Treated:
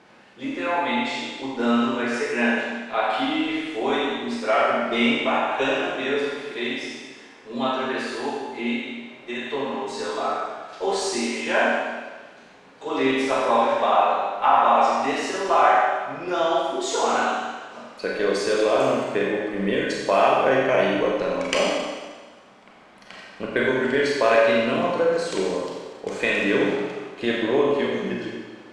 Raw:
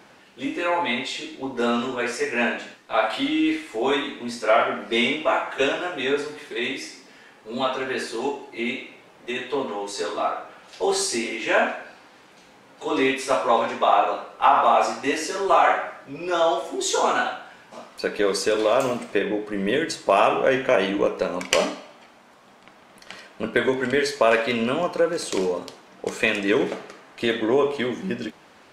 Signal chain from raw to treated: low-pass 11 kHz 24 dB/octave; treble shelf 7 kHz -10 dB; Schroeder reverb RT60 1.4 s, combs from 30 ms, DRR -2 dB; trim -3 dB

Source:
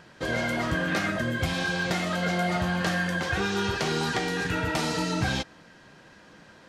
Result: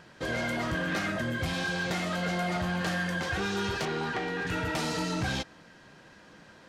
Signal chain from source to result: 3.85–4.47 s: tone controls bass -4 dB, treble -15 dB; saturation -22.5 dBFS, distortion -16 dB; trim -1.5 dB

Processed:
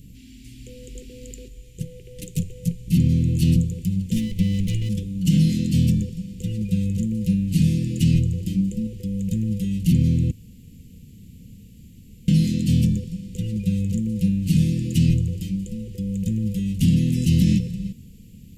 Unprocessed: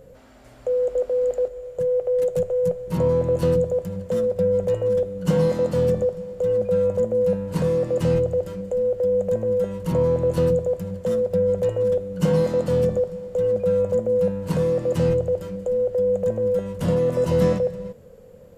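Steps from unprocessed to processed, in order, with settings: 4.16–4.89 s: comb filter that takes the minimum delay 0.32 ms; 10.31–12.28 s: room tone; elliptic band-stop 270–2600 Hz, stop band 50 dB; 8.42–8.87 s: dynamic bell 260 Hz, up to +7 dB, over -48 dBFS, Q 0.95; loudness maximiser +17 dB; trim -8 dB

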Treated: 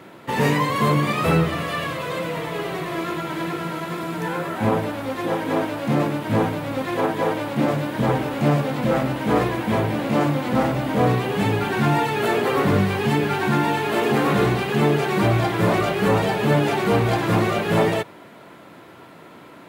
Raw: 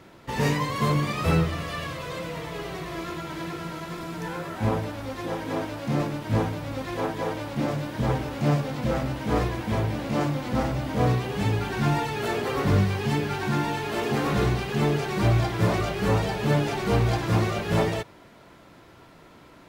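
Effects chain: high-pass 150 Hz 12 dB/octave; peaking EQ 5.5 kHz -7.5 dB 0.86 oct; in parallel at 0 dB: peak limiter -19 dBFS, peak gain reduction 7 dB; on the sum: trim +1.5 dB

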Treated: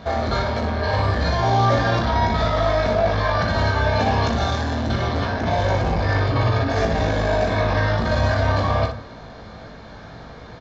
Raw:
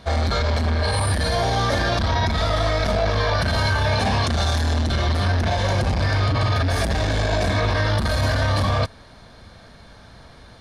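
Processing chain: treble shelf 2.3 kHz -10 dB; peak limiter -19.5 dBFS, peak gain reduction 8.5 dB; early reflections 18 ms -4.5 dB, 61 ms -7 dB; on a send at -9 dB: reverberation RT60 0.50 s, pre-delay 12 ms; on the sum: resampled via 16 kHz; bass shelf 62 Hz -12 dB; trim +7 dB

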